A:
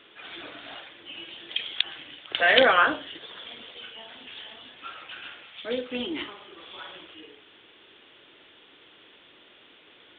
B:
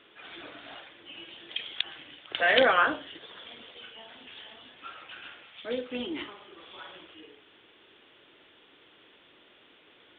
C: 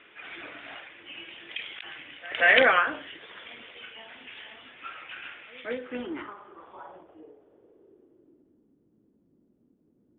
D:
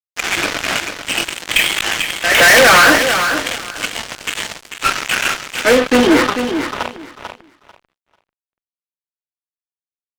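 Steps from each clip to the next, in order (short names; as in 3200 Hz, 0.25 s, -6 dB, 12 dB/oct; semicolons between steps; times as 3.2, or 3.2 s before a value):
high shelf 3700 Hz -6 dB; gain -2.5 dB
reverse echo 0.184 s -21.5 dB; low-pass sweep 2300 Hz -> 220 Hz, 5.53–8.76; ending taper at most 110 dB/s
fuzz box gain 39 dB, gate -41 dBFS; on a send: feedback echo 0.443 s, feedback 18%, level -8 dB; on the sum: gain +6.5 dB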